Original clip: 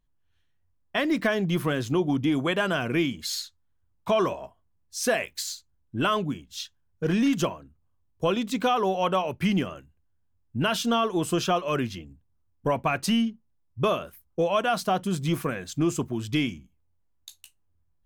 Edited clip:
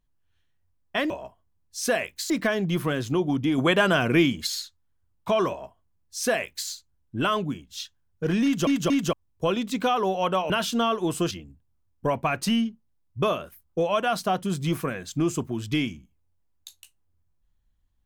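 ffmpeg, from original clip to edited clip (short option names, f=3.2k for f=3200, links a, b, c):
-filter_complex "[0:a]asplit=10[a][b][c][d][e][f][g][h][i][j];[a]atrim=end=1.102[k];[b]atrim=start=4.288:end=5.492[l];[c]atrim=start=1.098:end=2.382[m];[d]atrim=start=2.378:end=3.272,asetpts=PTS-STARTPTS,volume=5dB[n];[e]atrim=start=3.268:end=7.472[o];[f]atrim=start=7.238:end=7.472[p];[g]atrim=start=7.238:end=7.472[q];[h]atrim=start=7.928:end=9.302[r];[i]atrim=start=10.618:end=11.432[s];[j]atrim=start=11.918[t];[k][l]acrossfade=d=0.004:c1=hsin:c2=hsin[u];[u][m]acrossfade=d=0.004:c1=hsin:c2=hsin[v];[v][n]acrossfade=d=0.004:c1=hsin:c2=hsin[w];[w][o]acrossfade=d=0.004:c1=hsin:c2=hsin[x];[x][p]acrossfade=d=0.004:c1=hsin:c2=hsin[y];[y][q]acrossfade=d=0.004:c1=hsin:c2=hsin[z];[z][r]acrossfade=d=0.004:c1=hsin:c2=hsin[aa];[aa][s]acrossfade=d=0.004:c1=hsin:c2=hsin[ab];[ab][t]acrossfade=d=0.004:c1=hsin:c2=hsin"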